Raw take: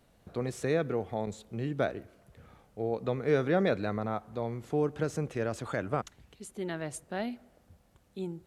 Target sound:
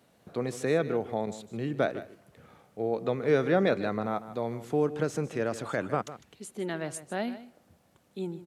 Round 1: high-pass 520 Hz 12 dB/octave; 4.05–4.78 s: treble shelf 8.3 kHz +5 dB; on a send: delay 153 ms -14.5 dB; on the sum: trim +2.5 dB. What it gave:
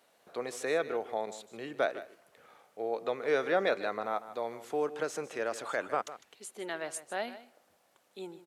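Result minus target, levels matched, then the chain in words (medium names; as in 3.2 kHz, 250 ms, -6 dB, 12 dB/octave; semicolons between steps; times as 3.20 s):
125 Hz band -15.0 dB
high-pass 140 Hz 12 dB/octave; 4.05–4.78 s: treble shelf 8.3 kHz +5 dB; on a send: delay 153 ms -14.5 dB; on the sum: trim +2.5 dB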